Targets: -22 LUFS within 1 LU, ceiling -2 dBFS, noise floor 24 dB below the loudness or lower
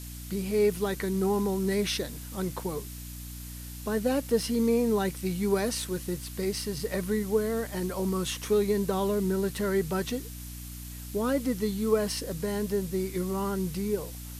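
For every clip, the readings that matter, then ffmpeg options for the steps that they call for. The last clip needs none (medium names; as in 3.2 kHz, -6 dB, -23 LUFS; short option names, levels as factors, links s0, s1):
hum 60 Hz; highest harmonic 300 Hz; hum level -39 dBFS; noise floor -41 dBFS; noise floor target -53 dBFS; loudness -29.0 LUFS; peak level -13.5 dBFS; loudness target -22.0 LUFS
-> -af "bandreject=f=60:t=h:w=4,bandreject=f=120:t=h:w=4,bandreject=f=180:t=h:w=4,bandreject=f=240:t=h:w=4,bandreject=f=300:t=h:w=4"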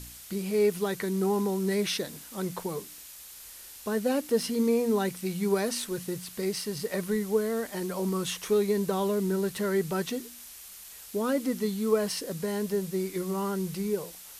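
hum not found; noise floor -47 dBFS; noise floor target -54 dBFS
-> -af "afftdn=nr=7:nf=-47"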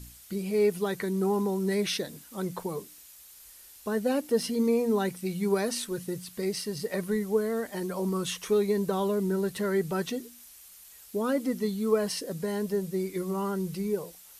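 noise floor -52 dBFS; noise floor target -54 dBFS
-> -af "afftdn=nr=6:nf=-52"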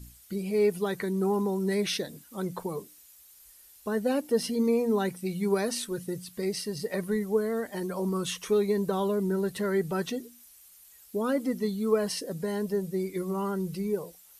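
noise floor -55 dBFS; loudness -29.5 LUFS; peak level -13.5 dBFS; loudness target -22.0 LUFS
-> -af "volume=2.37"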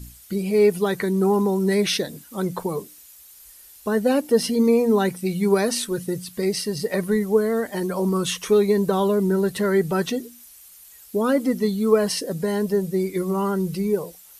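loudness -22.0 LUFS; peak level -6.0 dBFS; noise floor -48 dBFS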